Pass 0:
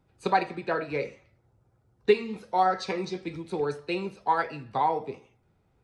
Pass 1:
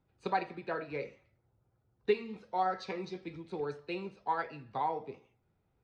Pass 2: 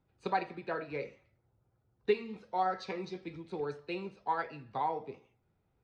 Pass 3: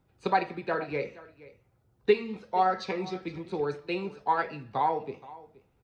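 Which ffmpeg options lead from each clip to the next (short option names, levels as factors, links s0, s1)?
-af "lowpass=5100,volume=0.398"
-af anull
-af "aecho=1:1:472:0.106,volume=2.11"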